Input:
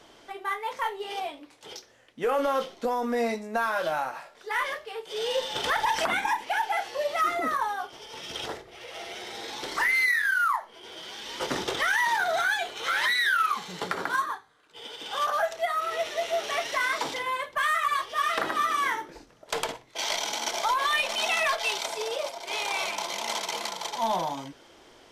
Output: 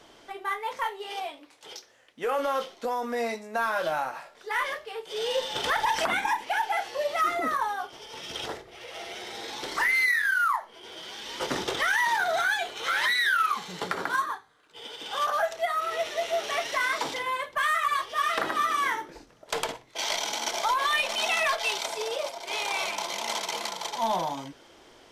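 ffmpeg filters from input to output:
ffmpeg -i in.wav -filter_complex "[0:a]asettb=1/sr,asplit=3[link_01][link_02][link_03];[link_01]atrim=end=0.844[link_04];[link_02]atrim=start=0.84:end=3.59,asetpts=PTS-STARTPTS,afade=type=in:duration=0.004:curve=qsin,afade=type=out:start_time=2.746:duration=0.004:curve=qsin,lowshelf=frequency=300:gain=-9.5[link_05];[link_03]atrim=start=3.586[link_06];[link_04][link_05]acrossfade=duration=0.004:curve1=hsin:curve2=qsin[link_07];[link_07][link_06]acrossfade=duration=0.004:curve1=qsin:curve2=hsin" out.wav

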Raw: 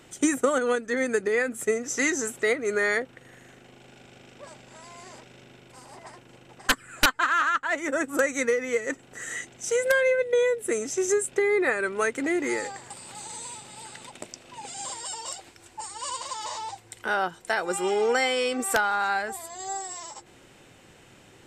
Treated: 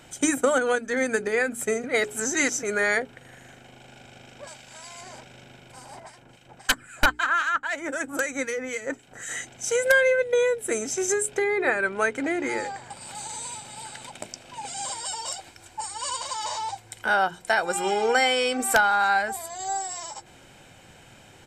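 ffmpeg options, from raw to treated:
ffmpeg -i in.wav -filter_complex "[0:a]asettb=1/sr,asplit=3[link_01][link_02][link_03];[link_01]atrim=end=4.474[link_04];[link_02]atrim=start=4.47:end=5.01,asetpts=PTS-STARTPTS,afade=type=in:duration=0.004:curve=qsin,afade=type=out:start_time=0.536:duration=0.004:curve=qsin,tiltshelf=frequency=1500:gain=-5[link_05];[link_03]atrim=start=5.006[link_06];[link_04][link_05]acrossfade=duration=0.004:curve1=hsin:curve2=qsin[link_07];[link_07][link_06]acrossfade=duration=0.004:curve1=qsin:curve2=hsin,asettb=1/sr,asplit=3[link_08][link_09][link_10];[link_08]atrim=end=6.004[link_11];[link_09]atrim=start=6:end=9.29,asetpts=PTS-STARTPTS,afade=type=in:duration=0.004:curve=qsin,afade=type=out:start_time=3.286:duration=0.004:curve=qsin,acrossover=split=1800[link_12][link_13];[link_12]aeval=exprs='val(0)*(1-0.7/2+0.7/2*cos(2*PI*3.8*n/s))':channel_layout=same[link_14];[link_13]aeval=exprs='val(0)*(1-0.7/2-0.7/2*cos(2*PI*3.8*n/s))':channel_layout=same[link_15];[link_14][link_15]amix=inputs=2:normalize=0[link_16];[link_10]atrim=start=9.286[link_17];[link_11][link_16]acrossfade=duration=0.004:curve1=hsin:curve2=qsin[link_18];[link_18][link_17]acrossfade=duration=0.004:curve1=qsin:curve2=hsin,asettb=1/sr,asplit=3[link_19][link_20][link_21];[link_19]atrim=end=11.444[link_22];[link_20]atrim=start=11.44:end=13.01,asetpts=PTS-STARTPTS,afade=type=in:duration=0.004:curve=qsin,afade=type=out:start_time=1.566:duration=0.004:curve=qsin,highshelf=frequency=5600:gain=-10[link_23];[link_21]atrim=start=13.006[link_24];[link_22][link_23]acrossfade=duration=0.004:curve1=hsin:curve2=qsin[link_25];[link_25][link_24]acrossfade=duration=0.004:curve1=qsin:curve2=hsin,asplit=3[link_26][link_27][link_28];[link_26]atrim=end=1.842[link_29];[link_27]atrim=start=1.838:end=2.632,asetpts=PTS-STARTPTS,areverse[link_30];[link_28]atrim=start=2.628[link_31];[link_29][link_30]acrossfade=duration=0.004:curve1=hsin:curve2=hsin[link_32];[link_32][link_31]acrossfade=duration=0.004:curve1=hsin:curve2=hsin,bandreject=frequency=60:width_type=h:width=6,bandreject=frequency=120:width_type=h:width=6,bandreject=frequency=180:width_type=h:width=6,bandreject=frequency=240:width_type=h:width=6,bandreject=frequency=300:width_type=h:width=6,bandreject=frequency=360:width_type=h:width=6,bandreject=frequency=420:width_type=h:width=6,aecho=1:1:1.3:0.36,volume=2.5dB" out.wav

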